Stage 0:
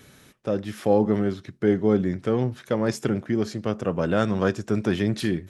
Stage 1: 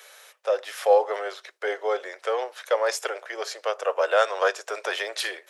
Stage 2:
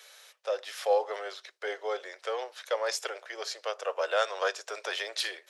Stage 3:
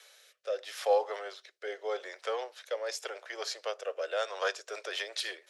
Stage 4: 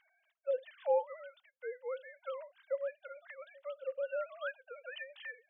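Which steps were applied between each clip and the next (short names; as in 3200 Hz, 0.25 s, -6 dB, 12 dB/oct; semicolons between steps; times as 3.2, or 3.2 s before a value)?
steep high-pass 500 Hz 48 dB/oct; gain +5.5 dB
bell 4500 Hz +7 dB 1.5 oct; gain -7.5 dB
rotary speaker horn 0.8 Hz, later 7 Hz, at 4.24
sine-wave speech; gain -4.5 dB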